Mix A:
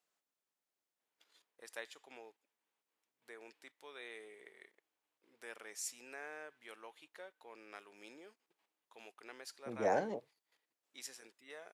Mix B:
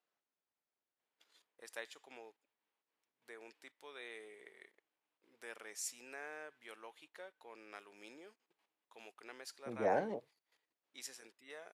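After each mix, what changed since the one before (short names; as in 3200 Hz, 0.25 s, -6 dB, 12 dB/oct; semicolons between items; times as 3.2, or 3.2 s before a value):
second voice: add air absorption 150 m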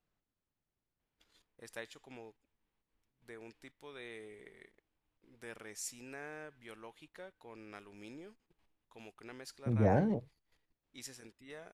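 master: remove HPF 460 Hz 12 dB/oct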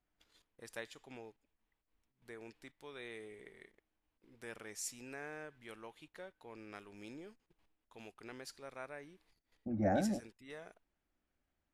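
first voice: entry -1.00 s; second voice: add fixed phaser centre 660 Hz, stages 8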